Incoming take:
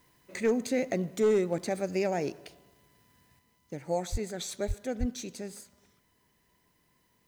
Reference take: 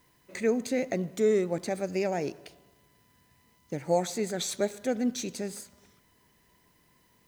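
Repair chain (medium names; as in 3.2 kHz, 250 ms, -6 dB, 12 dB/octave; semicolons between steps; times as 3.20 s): clip repair -19 dBFS; de-plosive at 4.11/4.67/4.99 s; trim 0 dB, from 3.39 s +5 dB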